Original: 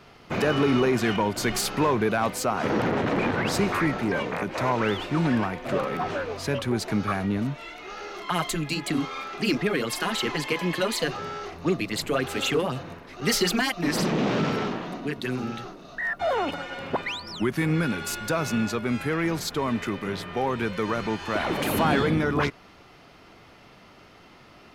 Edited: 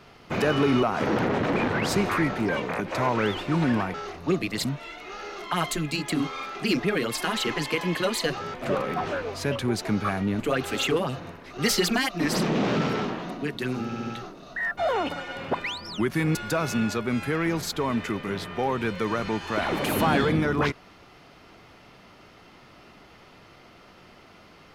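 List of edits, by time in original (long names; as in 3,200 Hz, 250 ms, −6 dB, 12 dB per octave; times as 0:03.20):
0:00.83–0:02.46: remove
0:05.57–0:07.43: swap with 0:11.32–0:12.03
0:15.48: stutter 0.07 s, 4 plays
0:17.77–0:18.13: remove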